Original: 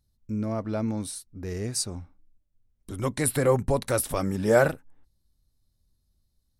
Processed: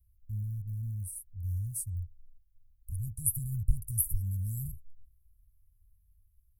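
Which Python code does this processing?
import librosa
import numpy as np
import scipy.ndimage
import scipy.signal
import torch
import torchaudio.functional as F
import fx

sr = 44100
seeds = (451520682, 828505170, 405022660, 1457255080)

y = fx.rattle_buzz(x, sr, strikes_db=-36.0, level_db=-26.0)
y = scipy.signal.sosfilt(scipy.signal.cheby2(4, 80, [470.0, 2900.0], 'bandstop', fs=sr, output='sos'), y)
y = F.gain(torch.from_numpy(y), 6.5).numpy()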